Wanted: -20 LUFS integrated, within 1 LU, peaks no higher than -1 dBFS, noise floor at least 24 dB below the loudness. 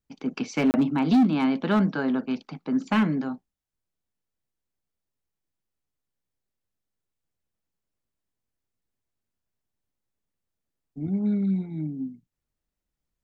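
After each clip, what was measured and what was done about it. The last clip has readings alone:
clipped 0.5%; flat tops at -15.0 dBFS; dropouts 1; longest dropout 29 ms; loudness -25.0 LUFS; peak -15.0 dBFS; loudness target -20.0 LUFS
-> clip repair -15 dBFS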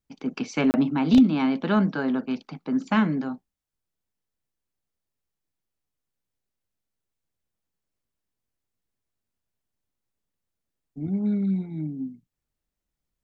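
clipped 0.0%; dropouts 1; longest dropout 29 ms
-> interpolate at 0.71, 29 ms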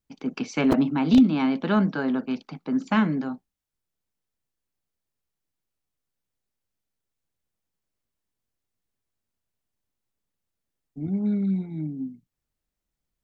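dropouts 0; loudness -24.0 LUFS; peak -6.0 dBFS; loudness target -20.0 LUFS
-> gain +4 dB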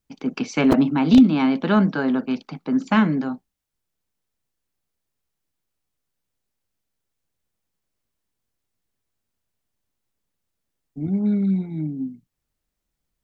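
loudness -20.0 LUFS; peak -2.0 dBFS; noise floor -81 dBFS

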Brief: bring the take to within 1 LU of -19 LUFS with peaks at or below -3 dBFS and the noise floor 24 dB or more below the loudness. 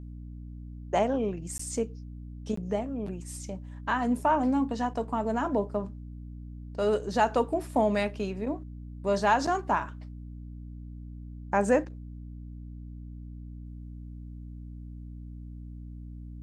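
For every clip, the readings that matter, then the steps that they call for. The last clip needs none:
dropouts 2; longest dropout 14 ms; hum 60 Hz; harmonics up to 300 Hz; hum level -39 dBFS; loudness -29.0 LUFS; peak -10.5 dBFS; loudness target -19.0 LUFS
-> interpolate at 1.58/2.56, 14 ms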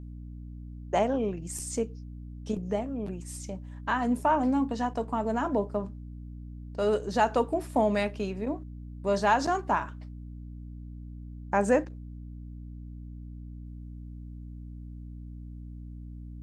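dropouts 0; hum 60 Hz; harmonics up to 300 Hz; hum level -39 dBFS
-> notches 60/120/180/240/300 Hz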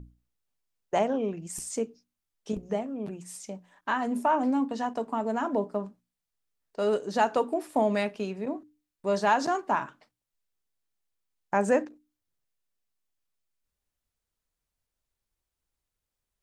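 hum none; loudness -29.0 LUFS; peak -11.0 dBFS; loudness target -19.0 LUFS
-> gain +10 dB; limiter -3 dBFS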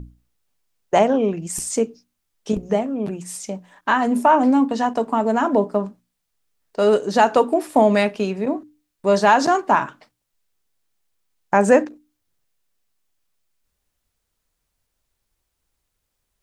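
loudness -19.0 LUFS; peak -3.0 dBFS; noise floor -77 dBFS

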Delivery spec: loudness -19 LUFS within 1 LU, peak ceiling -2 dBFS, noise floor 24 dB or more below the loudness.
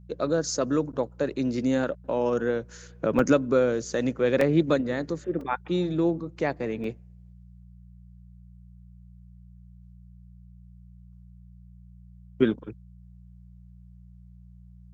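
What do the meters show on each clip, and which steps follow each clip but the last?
dropouts 4; longest dropout 2.8 ms; hum 60 Hz; harmonics up to 180 Hz; hum level -46 dBFS; loudness -26.5 LUFS; peak -7.5 dBFS; loudness target -19.0 LUFS
-> interpolate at 3.19/4.41/5.41/6.84, 2.8 ms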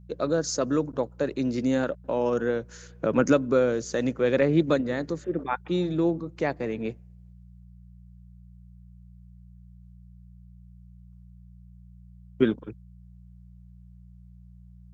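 dropouts 0; hum 60 Hz; harmonics up to 180 Hz; hum level -46 dBFS
-> de-hum 60 Hz, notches 3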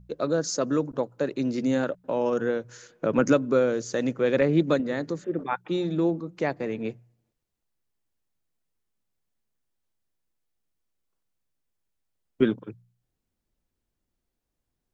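hum none; loudness -26.5 LUFS; peak -7.5 dBFS; loudness target -19.0 LUFS
-> gain +7.5 dB; limiter -2 dBFS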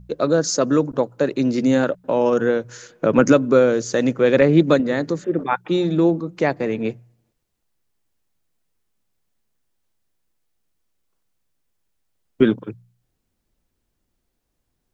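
loudness -19.0 LUFS; peak -2.0 dBFS; noise floor -74 dBFS

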